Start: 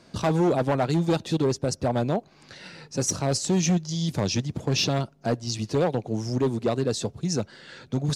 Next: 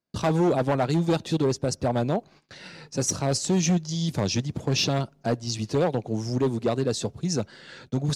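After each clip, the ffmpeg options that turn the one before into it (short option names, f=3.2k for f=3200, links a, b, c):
-af "agate=range=-34dB:threshold=-48dB:ratio=16:detection=peak"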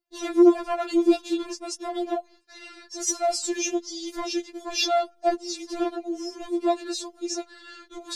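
-af "afftfilt=real='re*4*eq(mod(b,16),0)':imag='im*4*eq(mod(b,16),0)':win_size=2048:overlap=0.75,volume=1.5dB"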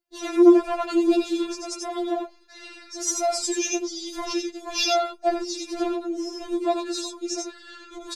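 -af "aecho=1:1:86|91:0.562|0.422"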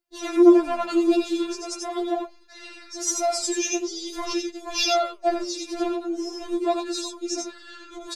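-af "flanger=delay=0.8:depth=9.7:regen=90:speed=0.43:shape=sinusoidal,volume=5dB"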